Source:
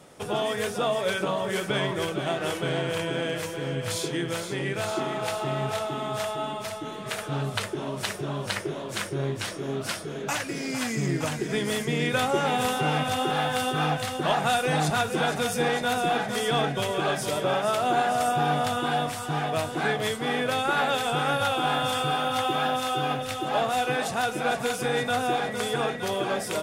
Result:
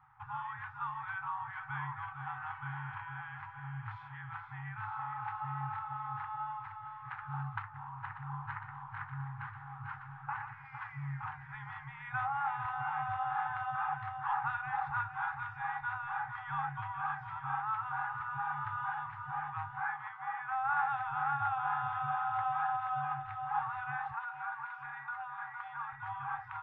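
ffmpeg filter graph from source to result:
-filter_complex "[0:a]asettb=1/sr,asplit=3[a][b][c];[a]atrim=end=7.624[d];[b]atrim=start=7.62:end=10.65,asetpts=PTS-STARTPTS,afade=t=in:d=0.004:c=qsin,afade=t=out:st=3.026:d=0.004:c=qsin,equalizer=f=13k:t=o:w=2.7:g=-9.5,aecho=1:1:120|442|702:0.422|0.531|0.141,atrim=end_sample=133623[e];[c]atrim=start=10.646[f];[d][e]acrossfade=d=0.004:c1=hsin:c2=qsin[g];[g][f]acrossfade=d=0.004:c1=qsin:c2=hsin,asettb=1/sr,asplit=3[h][i][j];[h]atrim=end=19.794[k];[i]atrim=start=19.79:end=20.64,asetpts=PTS-STARTPTS,afade=t=in:d=0.004:c=qsin,afade=t=out:st=0.846:d=0.004:c=qsin,highpass=f=190:w=0.5412,highpass=f=190:w=1.3066,highshelf=f=5.1k:t=q:w=1.5:g=-6,acrossover=split=2600[l][m];[m]acompressor=threshold=-45dB:ratio=4:attack=1:release=60[n];[l][n]amix=inputs=2:normalize=0[o];[j]atrim=start=20.636[p];[k][o]acrossfade=d=0.004:c1=hsin:c2=qsin[q];[q][p]acrossfade=d=0.004:c1=qsin:c2=hsin,asettb=1/sr,asplit=3[r][s][t];[r]atrim=end=24.134[u];[s]atrim=start=24.13:end=25.93,asetpts=PTS-STARTPTS,afade=t=in:d=0.004:c=qsin,afade=t=out:st=1.796:d=0.004:c=qsin,highpass=170,aecho=1:1:4.3:0.82,atrim=end_sample=79380,acompressor=threshold=-25dB:ratio=3:attack=3.2:release=140:knee=1:detection=peak[v];[t]atrim=start=25.926[w];[u][v]acrossfade=d=0.004:c1=hsin:c2=qsin[x];[x][w]acrossfade=d=0.004:c1=qsin:c2=hsin,lowpass=f=1.5k:w=0.5412,lowpass=f=1.5k:w=1.3066,afftfilt=real='re*(1-between(b*sr/4096,150,760))':imag='im*(1-between(b*sr/4096,150,760))':win_size=4096:overlap=0.75,lowshelf=f=380:g=-6,volume=-3.5dB"

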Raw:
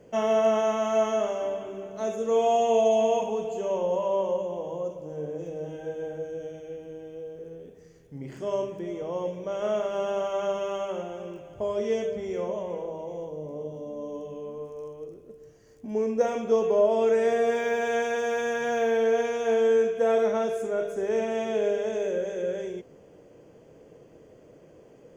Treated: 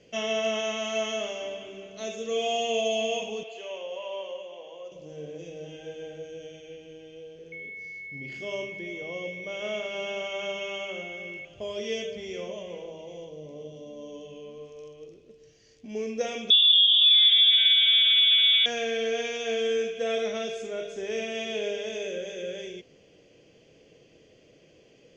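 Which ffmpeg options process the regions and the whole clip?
-filter_complex "[0:a]asettb=1/sr,asplit=3[a][b][c];[a]atrim=end=3.434[d];[b]atrim=start=3.43:end=4.92,asetpts=PTS-STARTPTS,afade=t=in:d=0.004:c=qsin,afade=t=out:st=1.486:d=0.004:c=qsin,highpass=570,lowpass=2.4k,aemphasis=mode=production:type=75fm[e];[c]atrim=start=4.916[f];[d][e]acrossfade=d=0.004:c1=hsin:c2=qsin[g];[g][f]acrossfade=d=0.004:c1=qsin:c2=hsin,asettb=1/sr,asplit=3[h][i][j];[h]atrim=end=7.524[k];[i]atrim=start=7.52:end=11.45,asetpts=PTS-STARTPTS,afade=t=in:d=0.004:c=qsin,afade=t=out:st=3.926:d=0.004:c=qsin,aeval=exprs='val(0)+0.00794*sin(2*PI*2200*n/s)':c=same,highshelf=f=4.4k:g=-5[l];[j]atrim=start=11.446[m];[k][l]acrossfade=d=0.004:c1=hsin:c2=qsin[n];[n][m]acrossfade=d=0.004:c1=qsin:c2=hsin,asettb=1/sr,asplit=3[o][p][q];[o]atrim=end=16.504[r];[p]atrim=start=16.5:end=18.66,asetpts=PTS-STARTPTS,afade=t=in:d=0.004:c=qsin,afade=t=out:st=2.156:d=0.004:c=qsin,acompressor=threshold=-24dB:ratio=6:attack=3.2:release=140:knee=1:detection=peak,equalizer=f=800:w=1.8:g=-4.5,lowpass=f=3.3k:t=q:w=0.5098,lowpass=f=3.3k:t=q:w=0.6013,lowpass=f=3.3k:t=q:w=0.9,lowpass=f=3.3k:t=q:w=2.563,afreqshift=-3900[s];[q]atrim=start=18.656[t];[r][s]acrossfade=d=0.004:c1=hsin:c2=qsin[u];[u][t]acrossfade=d=0.004:c1=qsin:c2=hsin,lowpass=f=5.9k:w=0.5412,lowpass=f=5.9k:w=1.3066,highshelf=f=1.9k:t=q:w=1.5:g=12.5,bandreject=f=910:w=8.6,volume=-5dB"

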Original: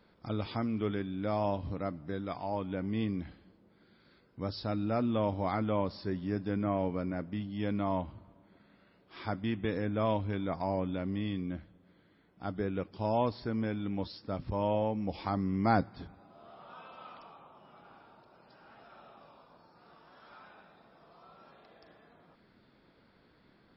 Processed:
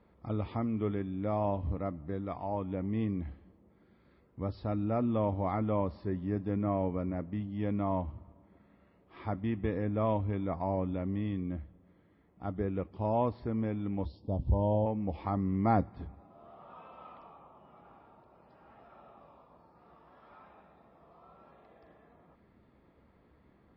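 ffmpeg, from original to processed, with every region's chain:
-filter_complex "[0:a]asettb=1/sr,asplit=3[a][b][c];[a]atrim=end=14.054[d];[b]atrim=start=14.05:end=14.86,asetpts=PTS-STARTPTS,afade=t=in:d=0.004:c=qsin,afade=t=out:st=0.806:d=0.004:c=qsin,asuperstop=centerf=1700:order=8:qfactor=0.82,lowshelf=f=120:g=8.5[e];[c]atrim=start=14.856[f];[d][e]acrossfade=d=0.004:c1=hsin:c2=qsin[g];[g][f]acrossfade=d=0.004:c1=qsin:c2=hsin,lowpass=1.9k,equalizer=f=69:w=2.6:g=11.5,bandreject=f=1.5k:w=6.1"

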